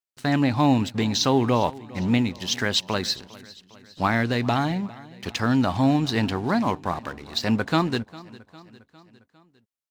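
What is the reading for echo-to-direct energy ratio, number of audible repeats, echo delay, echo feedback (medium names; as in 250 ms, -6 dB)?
-19.0 dB, 3, 404 ms, 56%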